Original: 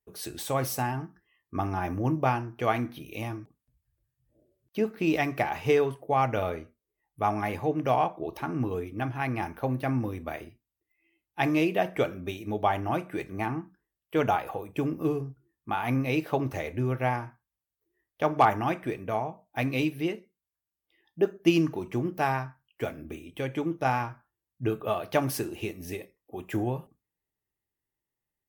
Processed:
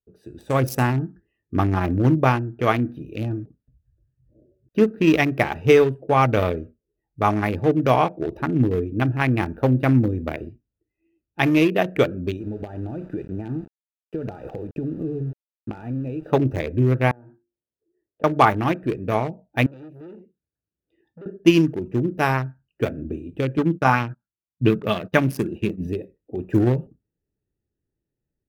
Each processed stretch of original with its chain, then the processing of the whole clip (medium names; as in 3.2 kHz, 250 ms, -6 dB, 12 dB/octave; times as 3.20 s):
12.40–16.29 s: compression 10:1, threshold -34 dBFS + small samples zeroed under -46.5 dBFS + treble shelf 4.7 kHz -4 dB
17.11–18.24 s: hum notches 50/100/150/200/250/300/350/400 Hz + compression, threshold -43 dBFS + band-pass filter 550 Hz, Q 0.66
19.66–21.26 s: high-pass 60 Hz 24 dB/octave + compression 4:1, threshold -42 dBFS + transformer saturation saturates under 2 kHz
23.58–25.87 s: gate -44 dBFS, range -22 dB + peaking EQ 190 Hz +10.5 dB 0.6 oct + sweeping bell 3.3 Hz 960–3500 Hz +10 dB
whole clip: local Wiener filter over 41 samples; peaking EQ 760 Hz -6 dB 0.54 oct; level rider gain up to 13.5 dB; trim -1 dB